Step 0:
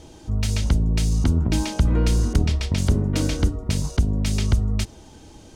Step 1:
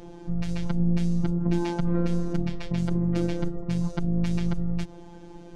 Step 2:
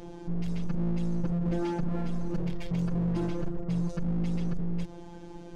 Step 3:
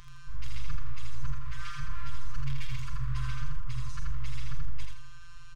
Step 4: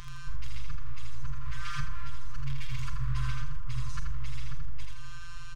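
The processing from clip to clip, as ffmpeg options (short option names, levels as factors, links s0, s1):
-af "alimiter=limit=0.15:level=0:latency=1:release=117,lowpass=f=1000:p=1,afftfilt=real='hypot(re,im)*cos(PI*b)':imag='0':win_size=1024:overlap=0.75,volume=2.11"
-af "asoftclip=type=hard:threshold=0.0631"
-filter_complex "[0:a]afftfilt=real='re*(1-between(b*sr/4096,140,990))':imag='im*(1-between(b*sr/4096,140,990))':win_size=4096:overlap=0.75,asplit=2[s0][s1];[s1]adelay=44,volume=0.251[s2];[s0][s2]amix=inputs=2:normalize=0,aecho=1:1:82|164|246|328:0.668|0.227|0.0773|0.0263,volume=1.26"
-af "acompressor=threshold=0.0355:ratio=6,volume=2.24"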